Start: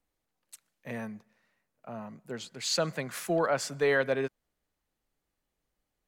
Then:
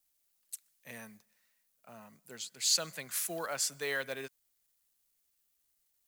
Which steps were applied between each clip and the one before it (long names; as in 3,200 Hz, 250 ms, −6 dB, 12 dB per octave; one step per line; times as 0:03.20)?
log-companded quantiser 8 bits
first-order pre-emphasis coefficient 0.9
level +6 dB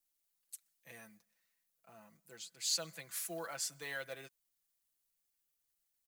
comb filter 6 ms
level −8 dB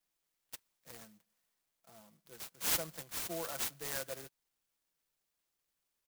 in parallel at −8 dB: bit reduction 8 bits
on the sum: converter with an unsteady clock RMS 0.13 ms